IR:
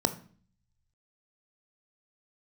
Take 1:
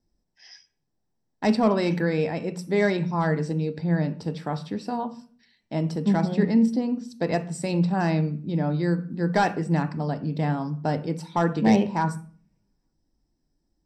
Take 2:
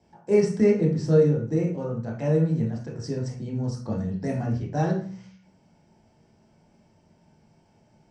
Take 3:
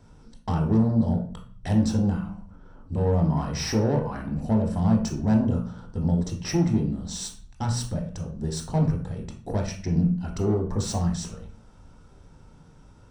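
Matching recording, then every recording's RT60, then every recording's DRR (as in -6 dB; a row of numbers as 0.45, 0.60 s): 1; 0.45, 0.45, 0.45 s; 10.0, -2.5, 1.5 dB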